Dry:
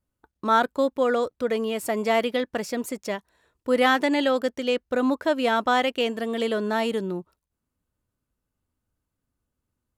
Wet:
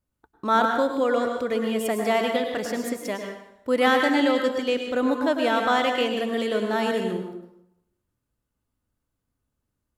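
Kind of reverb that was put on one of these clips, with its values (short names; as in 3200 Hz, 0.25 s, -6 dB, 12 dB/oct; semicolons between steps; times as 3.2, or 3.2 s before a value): plate-style reverb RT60 0.8 s, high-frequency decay 0.8×, pre-delay 90 ms, DRR 3 dB; gain -1 dB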